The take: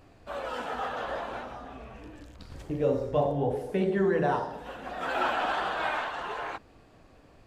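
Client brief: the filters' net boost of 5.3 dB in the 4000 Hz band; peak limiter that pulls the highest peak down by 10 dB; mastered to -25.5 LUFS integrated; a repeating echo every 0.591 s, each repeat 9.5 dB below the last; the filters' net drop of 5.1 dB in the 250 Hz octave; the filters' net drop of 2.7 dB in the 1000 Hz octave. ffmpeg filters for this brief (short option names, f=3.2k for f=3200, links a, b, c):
-af "equalizer=f=250:t=o:g=-8,equalizer=f=1k:t=o:g=-3.5,equalizer=f=4k:t=o:g=7.5,alimiter=level_in=1.5dB:limit=-24dB:level=0:latency=1,volume=-1.5dB,aecho=1:1:591|1182|1773|2364:0.335|0.111|0.0365|0.012,volume=10dB"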